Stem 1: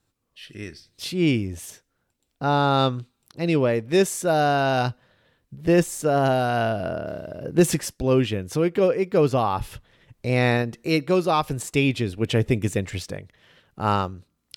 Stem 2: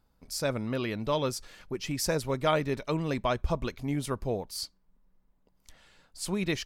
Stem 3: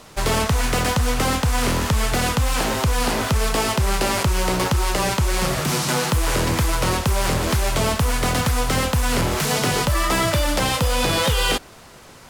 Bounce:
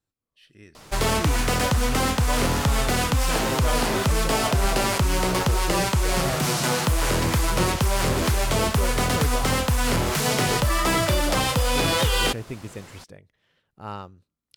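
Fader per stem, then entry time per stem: -13.0 dB, -5.0 dB, -2.0 dB; 0.00 s, 1.20 s, 0.75 s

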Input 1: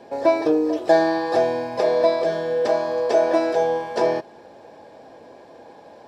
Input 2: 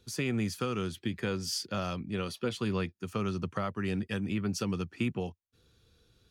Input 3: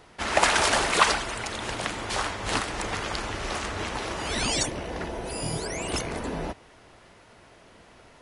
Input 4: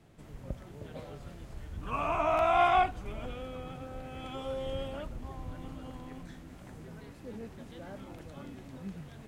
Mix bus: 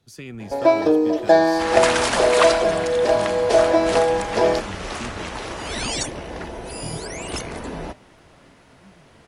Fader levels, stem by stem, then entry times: +2.0 dB, -5.0 dB, +0.5 dB, -9.5 dB; 0.40 s, 0.00 s, 1.40 s, 0.00 s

